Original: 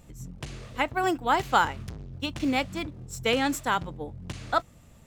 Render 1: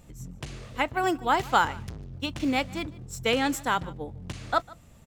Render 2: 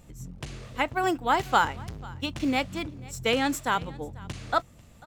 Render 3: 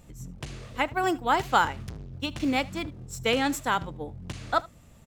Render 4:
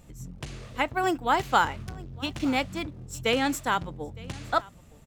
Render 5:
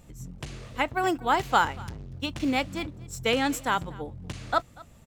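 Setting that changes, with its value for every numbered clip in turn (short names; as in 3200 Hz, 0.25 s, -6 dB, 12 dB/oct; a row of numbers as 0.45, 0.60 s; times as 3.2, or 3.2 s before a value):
echo, time: 150, 493, 77, 912, 239 ms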